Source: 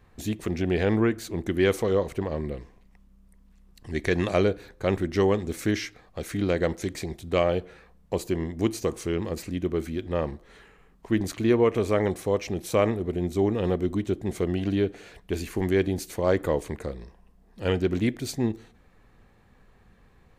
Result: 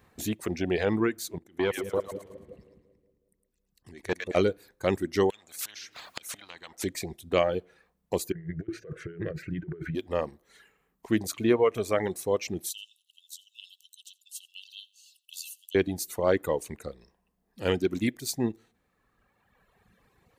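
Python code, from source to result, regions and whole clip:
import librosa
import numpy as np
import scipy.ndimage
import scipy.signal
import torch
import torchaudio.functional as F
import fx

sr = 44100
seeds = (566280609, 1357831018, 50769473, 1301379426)

y = fx.chain(x, sr, fx.level_steps(step_db=22),
    fx.echo_split(split_hz=520.0, low_ms=183, high_ms=109, feedback_pct=52, wet_db=-4.5),
    fx.transformer_sat(knee_hz=510.0), at=(1.38, 4.37))
y = fx.chain(y, sr, fx.tilt_eq(slope=-1.5),
    fx.gate_flip(shuts_db=-25.0, range_db=-26),
    fx.spectral_comp(ratio=10.0), at=(5.3, 6.84))
y = fx.chain(y, sr, fx.curve_eq(hz=(100.0, 160.0, 230.0, 360.0, 650.0, 920.0, 1500.0, 3000.0, 4900.0, 9900.0), db=(0, 10, -13, 1, -4, -26, 8, -10, -18, -28)),
    fx.over_compress(threshold_db=-30.0, ratio=-0.5), at=(8.32, 9.95))
y = fx.chain(y, sr, fx.brickwall_highpass(low_hz=2600.0),
    fx.echo_single(ms=85, db=-13.5), at=(12.69, 15.75))
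y = fx.highpass(y, sr, hz=140.0, slope=6)
y = fx.dereverb_blind(y, sr, rt60_s=1.9)
y = fx.high_shelf(y, sr, hz=8100.0, db=8.5)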